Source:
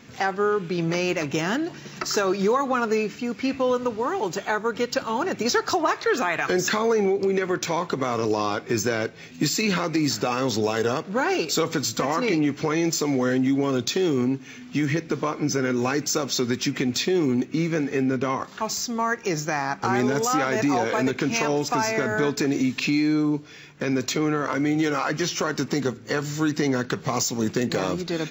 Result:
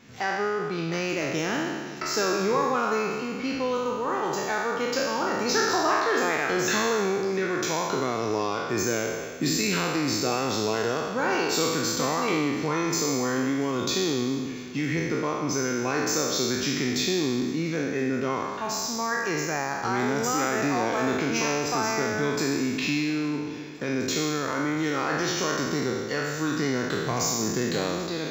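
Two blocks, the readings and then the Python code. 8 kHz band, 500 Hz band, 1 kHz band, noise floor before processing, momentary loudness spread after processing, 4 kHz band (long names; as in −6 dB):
+0.5 dB, −2.5 dB, −1.0 dB, −43 dBFS, 5 LU, 0.0 dB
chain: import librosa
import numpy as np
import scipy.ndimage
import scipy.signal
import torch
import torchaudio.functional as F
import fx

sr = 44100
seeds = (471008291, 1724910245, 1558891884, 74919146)

y = fx.spec_trails(x, sr, decay_s=1.58)
y = fx.echo_feedback(y, sr, ms=686, feedback_pct=59, wet_db=-22.5)
y = y * 10.0 ** (-6.0 / 20.0)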